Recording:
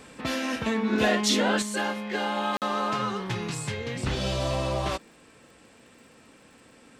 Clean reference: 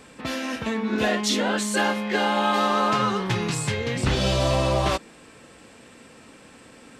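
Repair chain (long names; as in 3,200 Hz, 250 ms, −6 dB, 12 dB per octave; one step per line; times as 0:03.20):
click removal
repair the gap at 0:02.57, 48 ms
level 0 dB, from 0:01.62 +6 dB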